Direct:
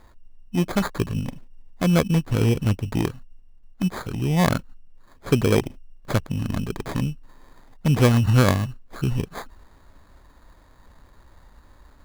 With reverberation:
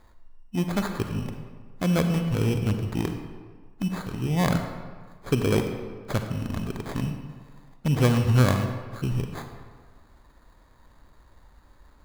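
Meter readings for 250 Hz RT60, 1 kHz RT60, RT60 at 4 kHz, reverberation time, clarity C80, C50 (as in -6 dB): 1.5 s, 1.6 s, 1.0 s, 1.6 s, 7.5 dB, 6.0 dB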